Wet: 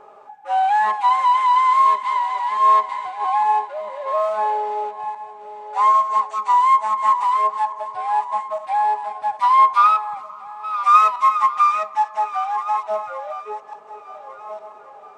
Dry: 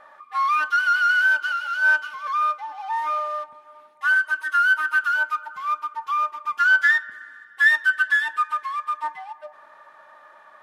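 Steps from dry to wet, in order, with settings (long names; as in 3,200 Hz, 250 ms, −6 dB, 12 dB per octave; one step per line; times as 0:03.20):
feedback delay that plays each chunk backwards 601 ms, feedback 43%, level −11 dB
speed change −30%
level +3.5 dB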